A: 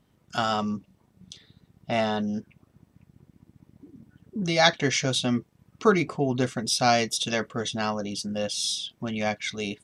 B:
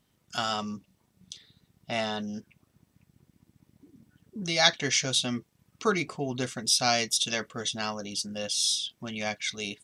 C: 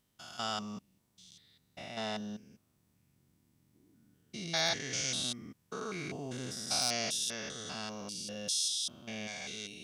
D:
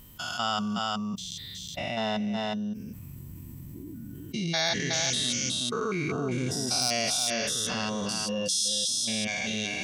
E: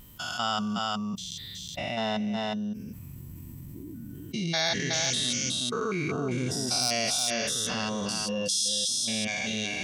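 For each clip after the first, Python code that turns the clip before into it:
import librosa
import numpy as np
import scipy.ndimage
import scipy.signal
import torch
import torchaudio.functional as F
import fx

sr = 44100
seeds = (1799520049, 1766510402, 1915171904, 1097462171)

y1 = fx.high_shelf(x, sr, hz=2100.0, db=10.5)
y1 = y1 * 10.0 ** (-7.0 / 20.0)
y2 = fx.spec_steps(y1, sr, hold_ms=200)
y2 = np.clip(y2, -10.0 ** (-15.5 / 20.0), 10.0 ** (-15.5 / 20.0))
y2 = fx.high_shelf(y2, sr, hz=5500.0, db=6.5)
y2 = y2 * 10.0 ** (-5.5 / 20.0)
y3 = fx.bin_expand(y2, sr, power=1.5)
y3 = y3 + 10.0 ** (-6.0 / 20.0) * np.pad(y3, (int(368 * sr / 1000.0), 0))[:len(y3)]
y3 = fx.env_flatten(y3, sr, amount_pct=70)
y3 = y3 * 10.0 ** (5.0 / 20.0)
y4 = fx.vibrato(y3, sr, rate_hz=0.56, depth_cents=11.0)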